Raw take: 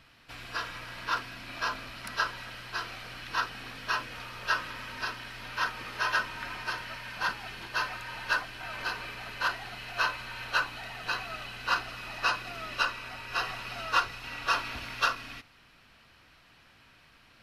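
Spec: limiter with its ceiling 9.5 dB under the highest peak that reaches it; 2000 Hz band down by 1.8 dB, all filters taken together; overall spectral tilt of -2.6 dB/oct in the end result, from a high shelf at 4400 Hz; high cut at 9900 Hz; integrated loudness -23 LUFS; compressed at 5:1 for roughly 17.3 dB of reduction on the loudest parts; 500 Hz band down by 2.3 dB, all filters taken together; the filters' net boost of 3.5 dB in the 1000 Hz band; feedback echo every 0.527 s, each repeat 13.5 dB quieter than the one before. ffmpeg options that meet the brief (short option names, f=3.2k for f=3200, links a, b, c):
-af "lowpass=9.9k,equalizer=f=500:t=o:g=-6,equalizer=f=1k:t=o:g=7.5,equalizer=f=2k:t=o:g=-7,highshelf=f=4.4k:g=4,acompressor=threshold=-40dB:ratio=5,alimiter=level_in=11dB:limit=-24dB:level=0:latency=1,volume=-11dB,aecho=1:1:527|1054:0.211|0.0444,volume=21.5dB"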